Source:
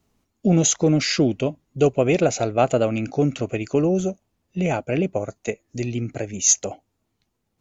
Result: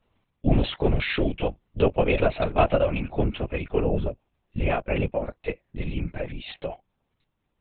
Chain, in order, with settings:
parametric band 310 Hz −10 dB 0.72 octaves
linear-prediction vocoder at 8 kHz whisper

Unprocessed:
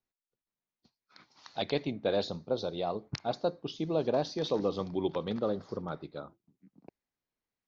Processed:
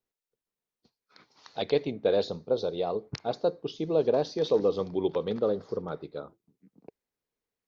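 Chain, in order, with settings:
parametric band 450 Hz +9 dB 0.44 octaves

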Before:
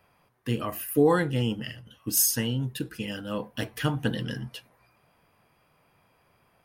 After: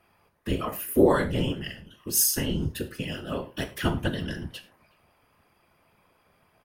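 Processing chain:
random phases in short frames
far-end echo of a speakerphone 370 ms, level −27 dB
reverb whose tail is shaped and stops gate 130 ms falling, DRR 7.5 dB

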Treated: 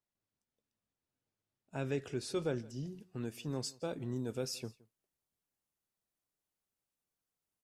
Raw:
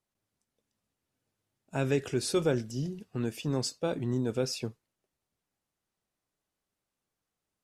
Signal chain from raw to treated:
high-shelf EQ 9,100 Hz −8 dB, from 0:02.87 +3.5 dB, from 0:04.16 +10.5 dB
single-tap delay 169 ms −23.5 dB
level −8 dB

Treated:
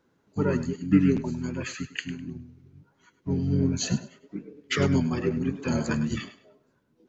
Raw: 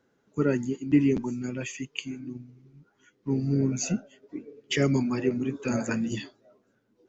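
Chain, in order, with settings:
pitch-shifted copies added −7 semitones −2 dB
feedback echo with a high-pass in the loop 102 ms, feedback 24%, high-pass 310 Hz, level −13 dB
level −1 dB

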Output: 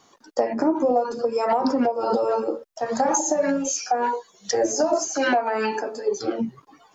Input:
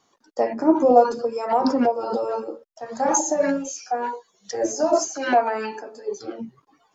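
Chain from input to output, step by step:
downward compressor 6 to 1, threshold −27 dBFS, peak gain reduction 17.5 dB
level +8.5 dB

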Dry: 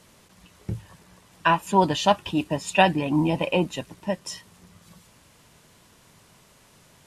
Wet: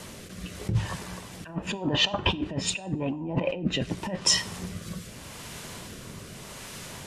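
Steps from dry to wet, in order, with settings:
treble cut that deepens with the level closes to 950 Hz, closed at −17.5 dBFS
0:01.70–0:02.18: low-shelf EQ 230 Hz −7 dB
compressor whose output falls as the input rises −35 dBFS, ratio −1
rotating-speaker cabinet horn 0.85 Hz
coupled-rooms reverb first 0.54 s, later 1.5 s, from −24 dB, DRR 16.5 dB
level +7.5 dB

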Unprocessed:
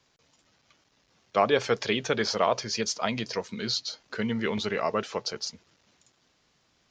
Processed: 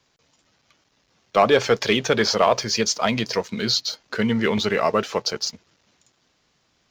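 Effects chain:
leveller curve on the samples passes 1
level +4 dB

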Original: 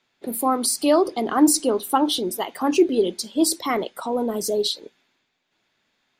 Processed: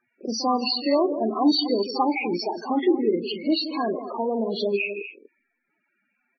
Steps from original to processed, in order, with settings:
hearing-aid frequency compression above 1,100 Hz 1.5 to 1
high-shelf EQ 3,300 Hz +4.5 dB
in parallel at +3 dB: downward compressor 20 to 1, threshold −27 dBFS, peak gain reduction 17.5 dB
on the sum: speed change −3%
on a send: multi-tap delay 40/166/240 ms −11.5/−12/−12 dB
on the sum: spectral peaks only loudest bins 16
echo ahead of the sound 41 ms −15 dB
level −5.5 dB

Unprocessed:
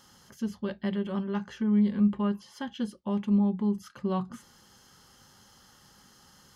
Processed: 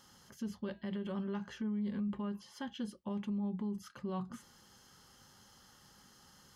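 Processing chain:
0:00.67–0:01.57: hum removal 324.7 Hz, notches 34
brickwall limiter −27 dBFS, peak gain reduction 11.5 dB
level −4 dB

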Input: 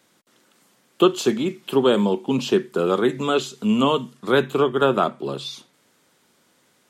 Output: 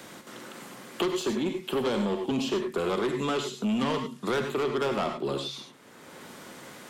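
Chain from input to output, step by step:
soft clipping −19.5 dBFS, distortion −8 dB
reverb whose tail is shaped and stops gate 120 ms rising, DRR 5.5 dB
multiband upward and downward compressor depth 70%
level −4 dB

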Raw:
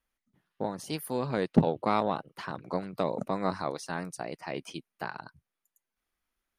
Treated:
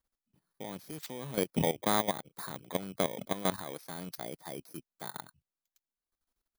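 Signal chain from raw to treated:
samples in bit-reversed order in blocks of 16 samples
output level in coarse steps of 14 dB
level +1 dB

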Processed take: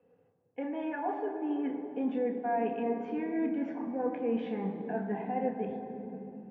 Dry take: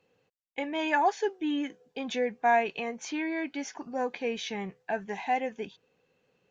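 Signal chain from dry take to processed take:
low-pass filter 1,100 Hz 12 dB per octave
reversed playback
downward compressor, threshold −35 dBFS, peak gain reduction 13.5 dB
reversed playback
convolution reverb RT60 3.5 s, pre-delay 3 ms, DRR 1.5 dB
level −6 dB

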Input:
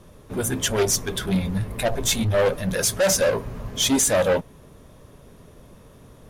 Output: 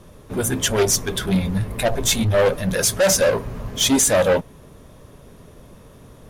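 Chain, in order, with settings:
0:03.37–0:03.81: hard clipping −25.5 dBFS, distortion −31 dB
level +3 dB

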